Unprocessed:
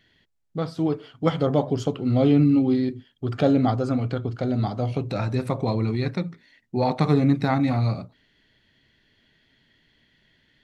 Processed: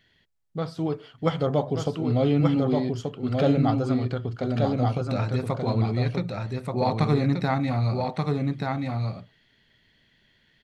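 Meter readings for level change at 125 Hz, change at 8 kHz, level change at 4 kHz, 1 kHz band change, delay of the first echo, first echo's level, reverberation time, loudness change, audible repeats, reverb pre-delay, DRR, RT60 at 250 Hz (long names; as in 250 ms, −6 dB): 0.0 dB, can't be measured, 0.0 dB, 0.0 dB, 1,181 ms, −3.5 dB, no reverb audible, −2.0 dB, 1, no reverb audible, no reverb audible, no reverb audible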